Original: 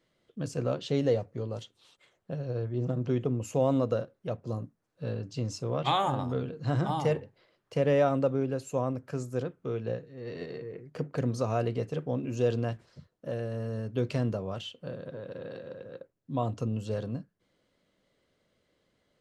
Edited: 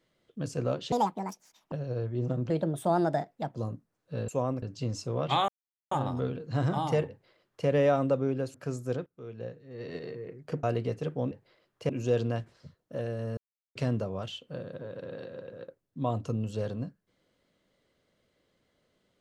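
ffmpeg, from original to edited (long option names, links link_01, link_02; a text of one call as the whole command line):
ffmpeg -i in.wav -filter_complex "[0:a]asplit=15[link_01][link_02][link_03][link_04][link_05][link_06][link_07][link_08][link_09][link_10][link_11][link_12][link_13][link_14][link_15];[link_01]atrim=end=0.924[link_16];[link_02]atrim=start=0.92:end=2.31,asetpts=PTS-STARTPTS,asetrate=76734,aresample=44100,atrim=end_sample=35229,asetpts=PTS-STARTPTS[link_17];[link_03]atrim=start=2.306:end=3.094[link_18];[link_04]atrim=start=3.09:end=4.45,asetpts=PTS-STARTPTS,asetrate=56889,aresample=44100,atrim=end_sample=46493,asetpts=PTS-STARTPTS[link_19];[link_05]atrim=start=4.446:end=5.182[link_20];[link_06]atrim=start=8.668:end=9.012[link_21];[link_07]atrim=start=5.178:end=6.04,asetpts=PTS-STARTPTS,afade=type=out:start_time=0.858:duration=0.004:curve=hsin,apad=pad_dur=0.43[link_22];[link_08]atrim=start=6.04:end=8.672,asetpts=PTS-STARTPTS,afade=type=in:duration=0.004:curve=hsin[link_23];[link_09]atrim=start=9.008:end=9.53,asetpts=PTS-STARTPTS,afade=type=out:start_time=0.518:duration=0.004:curve=hsin:silence=0.11885[link_24];[link_10]atrim=start=9.53:end=11.102,asetpts=PTS-STARTPTS,afade=type=in:duration=0.88:silence=0.11885[link_25];[link_11]atrim=start=11.538:end=12.222[link_26];[link_12]atrim=start=7.218:end=7.802[link_27];[link_13]atrim=start=12.218:end=13.7,asetpts=PTS-STARTPTS,afade=type=out:start_time=1.478:duration=0.004:curve=hsin[link_28];[link_14]atrim=start=13.7:end=14.08,asetpts=PTS-STARTPTS,volume=0[link_29];[link_15]atrim=start=14.08,asetpts=PTS-STARTPTS,afade=type=in:duration=0.004:curve=hsin[link_30];[link_16][link_17]acrossfade=duration=0.004:curve1=hsin:curve2=hsin[link_31];[link_31][link_18]acrossfade=duration=0.004:curve1=hsin:curve2=hsin[link_32];[link_32][link_19]acrossfade=duration=0.004:curve1=hsin:curve2=hsin[link_33];[link_33][link_20]acrossfade=duration=0.004:curve1=hsin:curve2=hsin[link_34];[link_34][link_21]acrossfade=duration=0.004:curve1=hsin:curve2=hsin[link_35];[link_22][link_23]concat=n=2:v=0:a=1[link_36];[link_35][link_36]acrossfade=duration=0.004:curve1=hsin:curve2=hsin[link_37];[link_24][link_25]concat=n=2:v=0:a=1[link_38];[link_37][link_38]acrossfade=duration=0.004:curve1=hsin:curve2=hsin[link_39];[link_39][link_26]acrossfade=duration=0.004:curve1=hsin:curve2=hsin[link_40];[link_40][link_27]acrossfade=duration=0.004:curve1=hsin:curve2=hsin[link_41];[link_28][link_29][link_30]concat=n=3:v=0:a=1[link_42];[link_41][link_42]acrossfade=duration=0.004:curve1=hsin:curve2=hsin" out.wav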